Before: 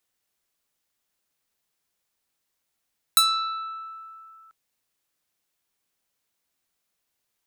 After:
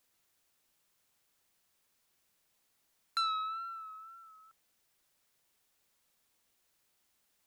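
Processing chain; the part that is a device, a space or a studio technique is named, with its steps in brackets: cassette deck with a dirty head (tape spacing loss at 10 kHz 29 dB; wow and flutter; white noise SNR 30 dB); gain -4 dB

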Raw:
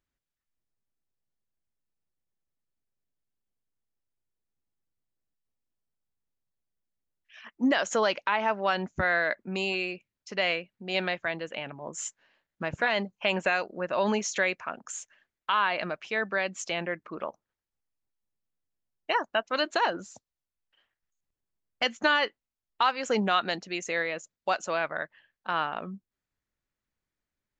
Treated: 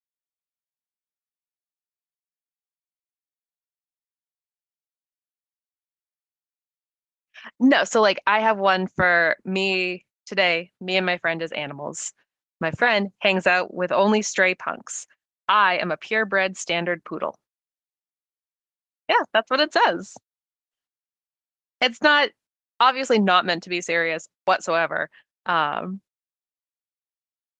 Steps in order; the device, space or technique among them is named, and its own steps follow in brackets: video call (HPF 100 Hz 24 dB/oct; AGC gain up to 5 dB; gate -47 dBFS, range -34 dB; gain +3 dB; Opus 20 kbps 48000 Hz)

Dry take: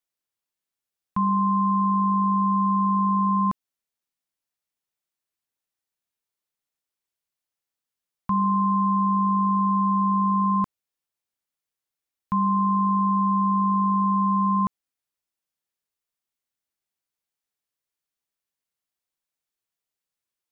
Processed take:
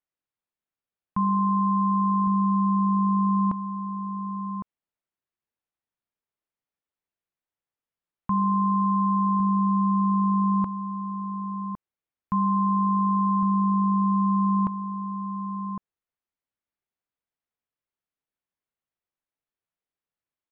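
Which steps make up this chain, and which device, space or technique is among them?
shout across a valley (air absorption 390 m; outdoor echo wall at 190 m, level -8 dB)

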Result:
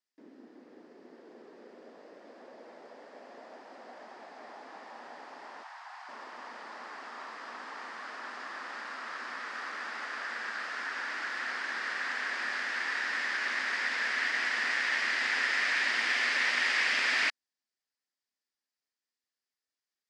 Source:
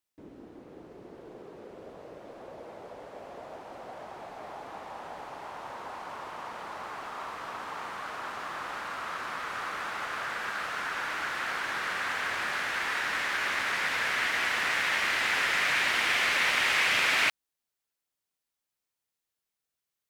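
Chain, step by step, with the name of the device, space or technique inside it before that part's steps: television speaker (speaker cabinet 230–8400 Hz, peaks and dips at 240 Hz +8 dB, 1800 Hz +8 dB, 4900 Hz +9 dB); 5.63–6.09 elliptic high-pass 740 Hz, stop band 60 dB; gain -6.5 dB

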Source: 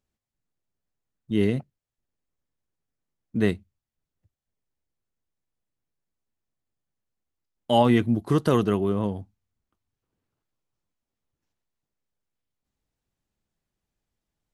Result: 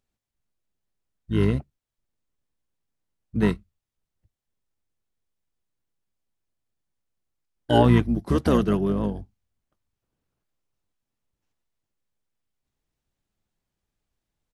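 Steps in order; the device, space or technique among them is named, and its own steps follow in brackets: octave pedal (harmoniser -12 st -2 dB); gain -1 dB

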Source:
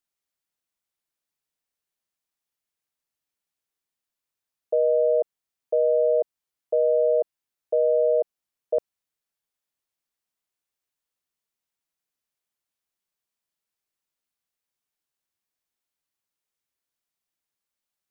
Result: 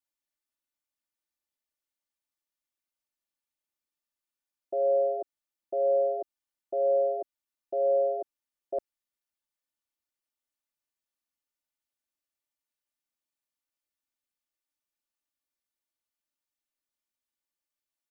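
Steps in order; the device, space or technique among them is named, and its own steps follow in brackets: ring-modulated robot voice (ring modulator 69 Hz; comb 3.4 ms, depth 100%); gain -5.5 dB

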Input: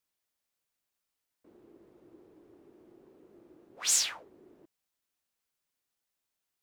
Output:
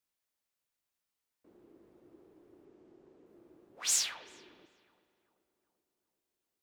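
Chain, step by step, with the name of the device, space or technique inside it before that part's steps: 2.65–3.26 steep low-pass 8100 Hz; dub delay into a spring reverb (darkening echo 0.386 s, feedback 62%, low-pass 1300 Hz, level -18 dB; spring tank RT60 1.7 s, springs 37 ms, chirp 75 ms, DRR 10.5 dB); gain -3 dB

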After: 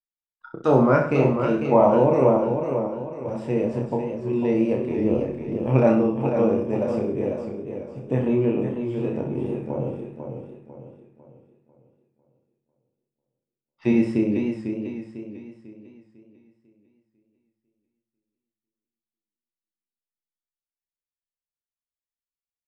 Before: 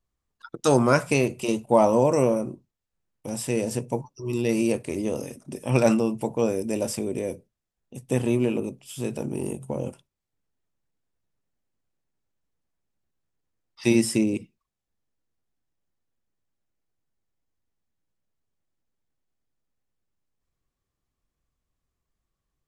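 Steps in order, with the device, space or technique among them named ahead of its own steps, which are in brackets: 5.04–5.57 tilt -2 dB/oct; hearing-loss simulation (LPF 1700 Hz 12 dB/oct; expander -52 dBFS); reverse bouncing-ball echo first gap 30 ms, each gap 1.1×, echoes 5; warbling echo 0.498 s, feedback 40%, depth 74 cents, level -7 dB

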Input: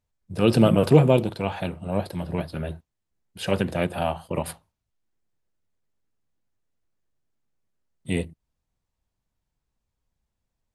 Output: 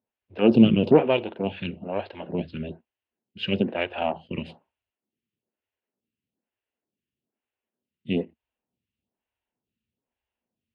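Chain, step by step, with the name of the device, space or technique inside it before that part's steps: vibe pedal into a guitar amplifier (photocell phaser 1.1 Hz; tube stage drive 10 dB, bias 0.55; speaker cabinet 110–3500 Hz, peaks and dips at 150 Hz -5 dB, 230 Hz +7 dB, 390 Hz +3 dB, 1200 Hz -6 dB, 2800 Hz +9 dB); gain +3 dB

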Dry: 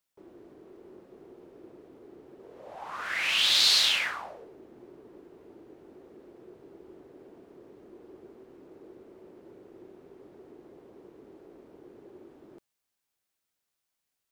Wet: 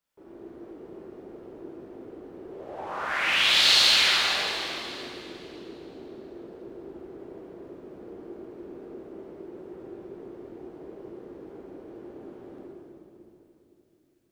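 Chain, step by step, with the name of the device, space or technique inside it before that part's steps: swimming-pool hall (reverb RT60 3.1 s, pre-delay 8 ms, DRR -7 dB; high shelf 3400 Hz -7 dB)

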